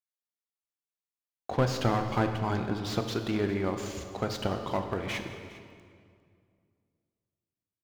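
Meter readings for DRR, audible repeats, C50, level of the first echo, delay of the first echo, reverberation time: 6.0 dB, 1, 7.0 dB, -19.0 dB, 0.403 s, 2.1 s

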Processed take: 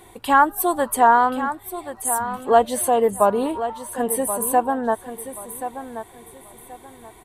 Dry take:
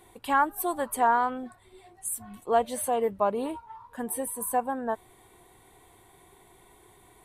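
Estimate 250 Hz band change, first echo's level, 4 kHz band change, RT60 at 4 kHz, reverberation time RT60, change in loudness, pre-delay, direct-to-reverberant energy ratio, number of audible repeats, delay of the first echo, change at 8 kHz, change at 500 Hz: +9.0 dB, -11.0 dB, +8.5 dB, none, none, +8.0 dB, none, none, 3, 1.08 s, +9.0 dB, +9.0 dB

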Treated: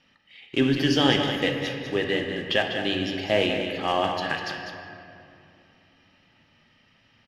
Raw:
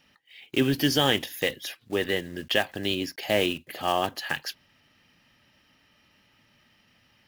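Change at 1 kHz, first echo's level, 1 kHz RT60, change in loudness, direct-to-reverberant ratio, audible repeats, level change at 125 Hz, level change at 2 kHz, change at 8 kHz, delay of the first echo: +2.0 dB, -8.0 dB, 2.5 s, +2.0 dB, 2.0 dB, 1, +3.0 dB, +2.0 dB, -5.5 dB, 0.198 s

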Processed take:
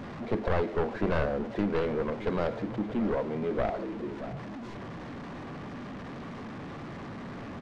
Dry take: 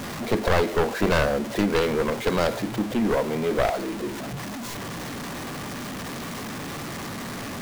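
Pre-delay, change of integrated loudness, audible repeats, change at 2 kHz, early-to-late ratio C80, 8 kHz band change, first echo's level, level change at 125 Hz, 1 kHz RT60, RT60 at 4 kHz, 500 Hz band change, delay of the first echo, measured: none, -6.5 dB, 1, -10.0 dB, none, under -25 dB, -13.5 dB, -5.0 dB, none, none, -6.5 dB, 0.624 s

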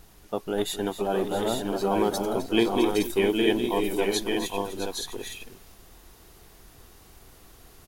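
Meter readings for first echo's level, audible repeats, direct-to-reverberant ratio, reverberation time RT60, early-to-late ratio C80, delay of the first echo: -12.5 dB, 4, none, none, none, 0.259 s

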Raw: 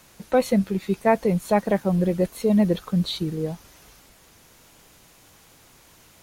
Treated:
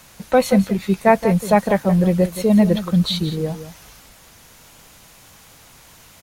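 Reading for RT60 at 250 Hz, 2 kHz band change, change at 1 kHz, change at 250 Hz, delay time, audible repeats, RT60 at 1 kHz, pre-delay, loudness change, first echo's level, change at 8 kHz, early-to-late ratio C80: none, +6.5 dB, +6.0 dB, +5.5 dB, 0.174 s, 1, none, none, +5.0 dB, -12.5 dB, +6.5 dB, none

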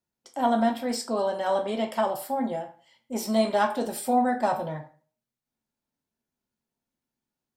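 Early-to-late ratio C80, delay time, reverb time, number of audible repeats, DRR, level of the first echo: 15.5 dB, none, 0.40 s, none, 4.0 dB, none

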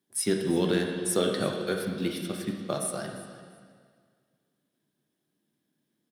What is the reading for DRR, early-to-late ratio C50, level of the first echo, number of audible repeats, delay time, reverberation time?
2.0 dB, 4.0 dB, -18.0 dB, 2, 0.346 s, 1.9 s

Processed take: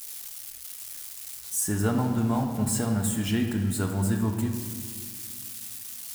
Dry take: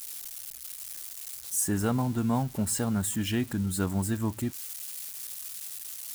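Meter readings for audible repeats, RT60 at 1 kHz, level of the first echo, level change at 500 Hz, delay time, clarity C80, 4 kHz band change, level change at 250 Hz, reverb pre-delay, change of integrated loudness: none, 1.7 s, none, +2.0 dB, none, 7.0 dB, +1.0 dB, +2.5 dB, 5 ms, +2.0 dB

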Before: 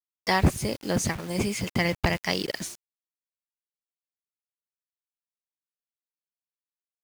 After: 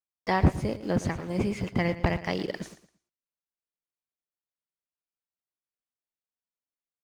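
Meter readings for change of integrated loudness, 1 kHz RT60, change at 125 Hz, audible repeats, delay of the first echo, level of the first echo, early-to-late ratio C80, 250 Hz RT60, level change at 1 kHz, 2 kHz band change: -1.5 dB, none, 0.0 dB, 2, 0.114 s, -14.5 dB, none, none, -1.5 dB, -5.0 dB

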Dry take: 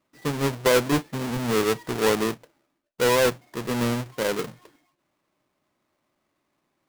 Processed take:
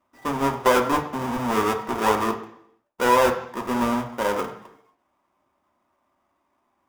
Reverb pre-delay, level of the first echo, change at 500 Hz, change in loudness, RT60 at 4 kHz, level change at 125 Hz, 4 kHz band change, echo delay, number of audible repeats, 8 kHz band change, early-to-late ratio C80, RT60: 3 ms, none, 0.0 dB, +1.0 dB, 0.70 s, -5.0 dB, -3.5 dB, none, none, -3.5 dB, 12.5 dB, 0.70 s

